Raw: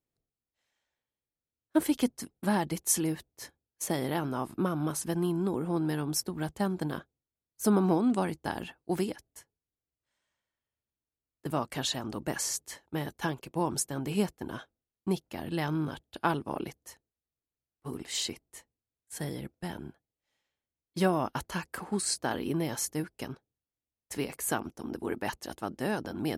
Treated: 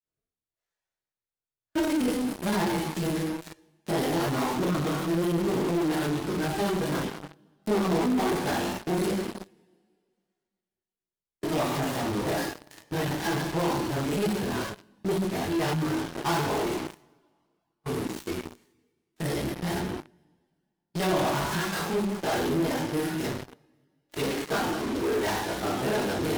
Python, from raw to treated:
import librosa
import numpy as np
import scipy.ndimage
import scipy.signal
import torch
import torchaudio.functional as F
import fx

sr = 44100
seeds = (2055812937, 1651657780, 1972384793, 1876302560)

p1 = fx.dead_time(x, sr, dead_ms=0.15)
p2 = fx.rev_double_slope(p1, sr, seeds[0], early_s=0.65, late_s=2.1, knee_db=-17, drr_db=-5.0)
p3 = fx.granulator(p2, sr, seeds[1], grain_ms=140.0, per_s=27.0, spray_ms=24.0, spread_st=0)
p4 = fx.fuzz(p3, sr, gain_db=45.0, gate_db=-45.0)
p5 = p3 + (p4 * librosa.db_to_amplitude(-10.0))
p6 = fx.transformer_sat(p5, sr, knee_hz=350.0)
y = p6 * librosa.db_to_amplitude(-4.5)